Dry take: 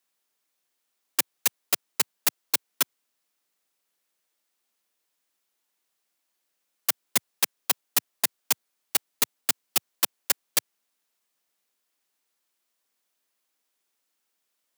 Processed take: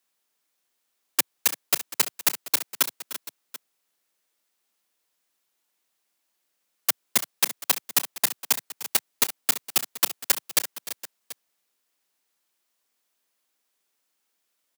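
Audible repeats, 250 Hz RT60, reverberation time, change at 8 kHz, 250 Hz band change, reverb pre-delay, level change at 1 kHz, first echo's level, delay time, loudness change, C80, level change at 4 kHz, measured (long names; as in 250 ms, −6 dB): 3, no reverb audible, no reverb audible, +2.0 dB, +2.0 dB, no reverb audible, +2.0 dB, −15.5 dB, 301 ms, +2.0 dB, no reverb audible, +2.0 dB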